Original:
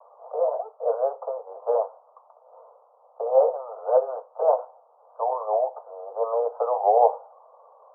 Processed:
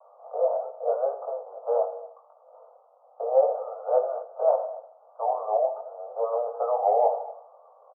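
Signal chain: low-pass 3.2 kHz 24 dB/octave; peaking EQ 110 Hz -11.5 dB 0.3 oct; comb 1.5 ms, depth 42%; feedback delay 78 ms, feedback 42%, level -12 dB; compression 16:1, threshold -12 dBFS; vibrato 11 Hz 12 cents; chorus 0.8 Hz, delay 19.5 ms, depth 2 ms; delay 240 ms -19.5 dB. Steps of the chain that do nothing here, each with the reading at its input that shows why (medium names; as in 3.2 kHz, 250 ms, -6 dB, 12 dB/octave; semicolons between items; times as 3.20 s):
low-pass 3.2 kHz: input has nothing above 1.2 kHz; peaking EQ 110 Hz: input has nothing below 380 Hz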